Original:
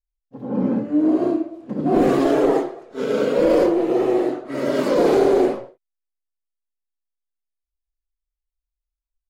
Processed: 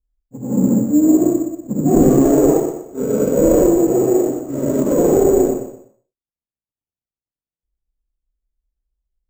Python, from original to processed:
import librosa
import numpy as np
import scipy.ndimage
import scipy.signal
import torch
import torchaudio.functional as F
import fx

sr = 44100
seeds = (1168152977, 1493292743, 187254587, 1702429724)

p1 = scipy.ndimage.median_filter(x, 25, mode='constant')
p2 = fx.highpass(p1, sr, hz=55.0, slope=6)
p3 = fx.tilt_eq(p2, sr, slope=-4.5)
p4 = fx.rider(p3, sr, range_db=10, speed_s=2.0)
p5 = p4 + fx.echo_feedback(p4, sr, ms=122, feedback_pct=29, wet_db=-9, dry=0)
p6 = np.repeat(p5[::6], 6)[:len(p5)]
y = p6 * librosa.db_to_amplitude(-3.5)